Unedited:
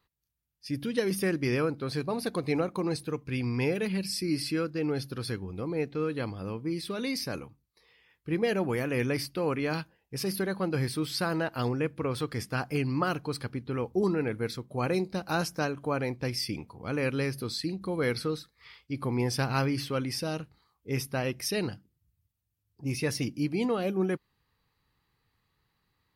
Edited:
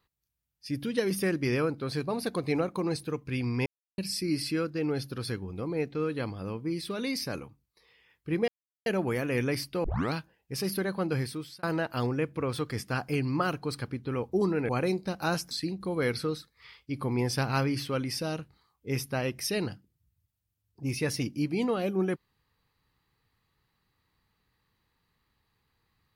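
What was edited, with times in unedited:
3.66–3.98 mute
8.48 insert silence 0.38 s
9.46 tape start 0.29 s
10.75–11.25 fade out
14.31–14.76 cut
15.58–17.52 cut

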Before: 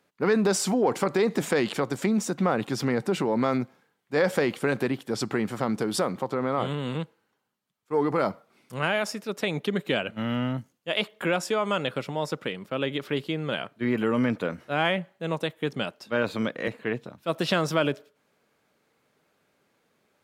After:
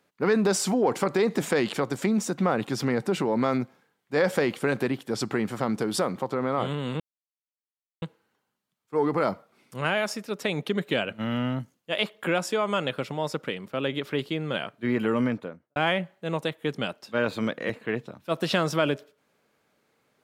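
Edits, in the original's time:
7 insert silence 1.02 s
14.1–14.74 studio fade out

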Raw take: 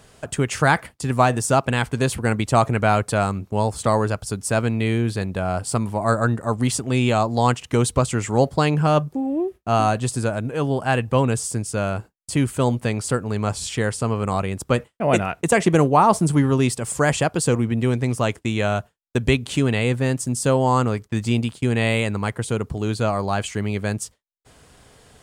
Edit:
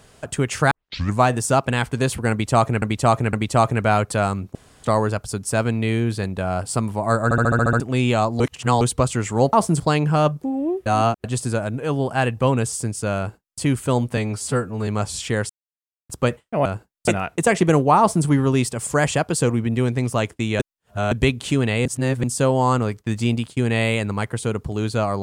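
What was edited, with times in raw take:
0.71 tape start 0.49 s
2.31–2.82 loop, 3 plays
3.53–3.82 room tone
6.22 stutter in place 0.07 s, 8 plays
7.38–7.79 reverse
9.57–9.95 reverse
11.89–12.31 copy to 15.13
12.88–13.35 stretch 1.5×
13.97–14.57 mute
16.05–16.32 copy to 8.51
18.65–19.17 reverse
19.91–20.29 reverse

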